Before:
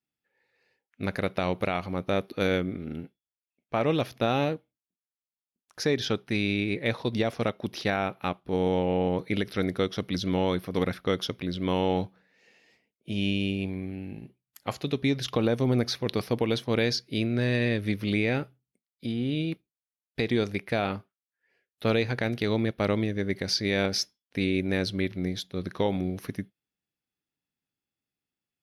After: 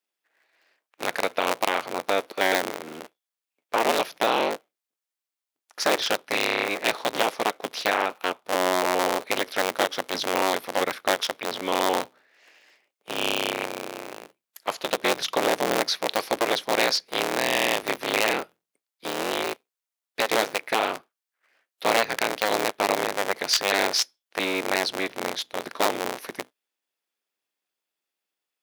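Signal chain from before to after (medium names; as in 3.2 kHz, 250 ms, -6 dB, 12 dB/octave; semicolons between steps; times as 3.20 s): cycle switcher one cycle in 3, inverted; high-pass 480 Hz 12 dB/octave; trim +5.5 dB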